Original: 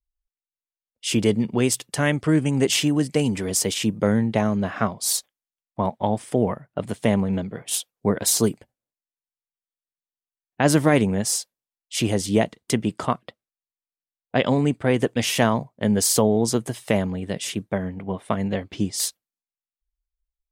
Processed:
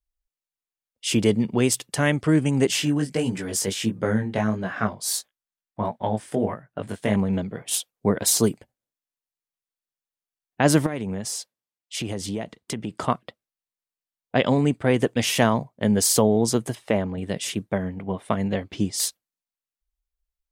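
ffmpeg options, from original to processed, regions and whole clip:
-filter_complex "[0:a]asettb=1/sr,asplit=3[s0][s1][s2];[s0]atrim=end=2.674[s3];[s1]atrim=start=2.67:end=7.16,asetpts=PTS-STARTPTS,afade=t=in:d=0.004:c=qsin,afade=t=out:st=4.486:d=0.004:c=qsin,equalizer=f=1600:t=o:w=0.38:g=6,flanger=delay=16.5:depth=4.2:speed=1.5[s4];[s2]atrim=start=7.156[s5];[s3][s4]acrossfade=d=0.004:c1=hsin:c2=qsin[s6];[s6][s5]acrossfade=d=0.004:c1=qsin:c2=hsin,asettb=1/sr,asplit=3[s7][s8][s9];[s7]atrim=end=10.864[s10];[s8]atrim=start=10.86:end=12.97,asetpts=PTS-STARTPTS,afade=t=in:d=0.004:c=qsin,afade=t=out:st=2.106:d=0.004:c=qsin,highpass=42,highshelf=f=7300:g=-6,acompressor=threshold=0.0501:ratio=4:attack=3.2:release=140:knee=1:detection=peak[s11];[s9]atrim=start=12.966[s12];[s10][s11]acrossfade=d=0.004:c1=hsin:c2=qsin[s13];[s13][s12]acrossfade=d=0.004:c1=qsin:c2=hsin,asettb=1/sr,asplit=3[s14][s15][s16];[s14]atrim=end=16.754[s17];[s15]atrim=start=16.75:end=17.18,asetpts=PTS-STARTPTS,afade=t=in:d=0.004:c=qsin,afade=t=out:st=0.426:d=0.004:c=qsin,lowpass=f=2100:p=1,equalizer=f=140:t=o:w=0.41:g=-14.5[s18];[s16]atrim=start=17.176[s19];[s17][s18]acrossfade=d=0.004:c1=hsin:c2=qsin[s20];[s20][s19]acrossfade=d=0.004:c1=qsin:c2=hsin"

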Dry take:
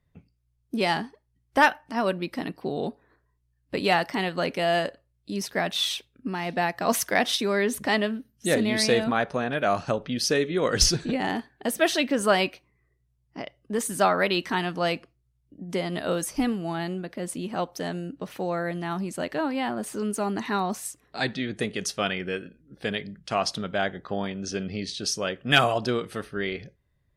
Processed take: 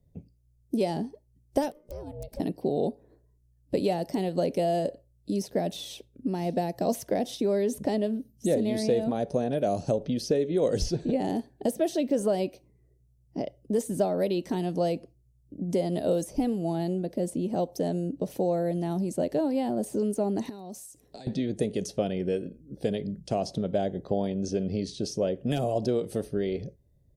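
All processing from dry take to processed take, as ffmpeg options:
-filter_complex "[0:a]asettb=1/sr,asplit=3[s0][s1][s2];[s0]atrim=end=1.714[s3];[s1]atrim=start=1.71:end=2.4,asetpts=PTS-STARTPTS,afade=t=in:d=0.004:c=qsin,afade=t=out:st=0.686:d=0.004:c=qsin,acompressor=threshold=0.0126:ratio=6:attack=3.2:release=140:knee=1:detection=peak,aeval=exprs='(mod(29.9*val(0)+1,2)-1)/29.9':c=same,aeval=exprs='val(0)*sin(2*PI*300*n/s)':c=same[s4];[s2]atrim=start=2.396[s5];[s3][s4]acrossfade=d=0.004:c1=hsin:c2=qsin[s6];[s6][s5]acrossfade=d=0.004:c1=qsin:c2=hsin,asettb=1/sr,asplit=3[s7][s8][s9];[s7]atrim=end=20.494[s10];[s8]atrim=start=20.49:end=21.27,asetpts=PTS-STARTPTS,afade=t=in:d=0.004:c=qsin,afade=t=out:st=0.776:d=0.004:c=qsin,tiltshelf=f=1400:g=-4,acompressor=threshold=0.01:ratio=16:attack=3.2:release=140:knee=1:detection=peak[s11];[s9]atrim=start=21.266[s12];[s10][s11]acrossfade=d=0.004:c1=hsin:c2=qsin[s13];[s13][s12]acrossfade=d=0.004:c1=qsin:c2=hsin,highshelf=f=3600:g=8.5,acrossover=split=570|3500[s14][s15][s16];[s14]acompressor=threshold=0.02:ratio=4[s17];[s15]acompressor=threshold=0.0316:ratio=4[s18];[s16]acompressor=threshold=0.0126:ratio=4[s19];[s17][s18][s19]amix=inputs=3:normalize=0,firequalizer=gain_entry='entry(570,0);entry(1200,-24);entry(5900,-12)':delay=0.05:min_phase=1,volume=2.24"

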